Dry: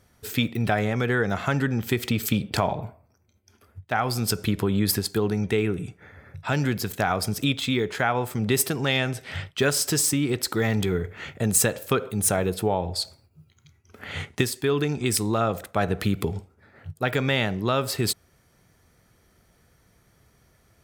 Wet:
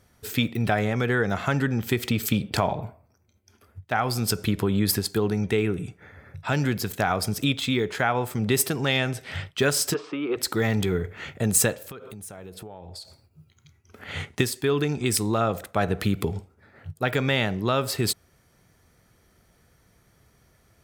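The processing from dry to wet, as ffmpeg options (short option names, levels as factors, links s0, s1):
-filter_complex "[0:a]asplit=3[s0][s1][s2];[s0]afade=t=out:st=9.93:d=0.02[s3];[s1]highpass=f=240:w=0.5412,highpass=f=240:w=1.3066,equalizer=f=260:t=q:w=4:g=-7,equalizer=f=450:t=q:w=4:g=5,equalizer=f=1200:t=q:w=4:g=10,equalizer=f=1900:t=q:w=4:g=-8,lowpass=f=2800:w=0.5412,lowpass=f=2800:w=1.3066,afade=t=in:st=9.93:d=0.02,afade=t=out:st=10.36:d=0.02[s4];[s2]afade=t=in:st=10.36:d=0.02[s5];[s3][s4][s5]amix=inputs=3:normalize=0,asplit=3[s6][s7][s8];[s6]afade=t=out:st=11.74:d=0.02[s9];[s7]acompressor=threshold=0.0141:ratio=8:attack=3.2:release=140:knee=1:detection=peak,afade=t=in:st=11.74:d=0.02,afade=t=out:st=14.07:d=0.02[s10];[s8]afade=t=in:st=14.07:d=0.02[s11];[s9][s10][s11]amix=inputs=3:normalize=0"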